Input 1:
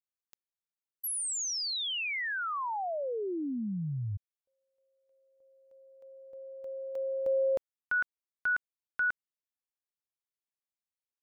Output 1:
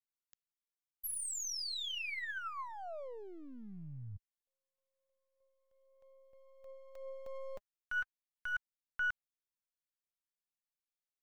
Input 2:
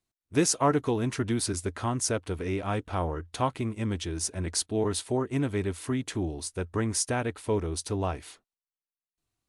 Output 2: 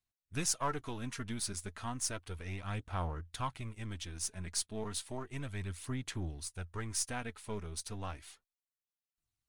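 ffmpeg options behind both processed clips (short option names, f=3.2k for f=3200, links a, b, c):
-af "aeval=exprs='if(lt(val(0),0),0.708*val(0),val(0))':c=same,equalizer=f=380:w=0.66:g=-11,aphaser=in_gain=1:out_gain=1:delay=4.9:decay=0.37:speed=0.33:type=sinusoidal,volume=-5.5dB"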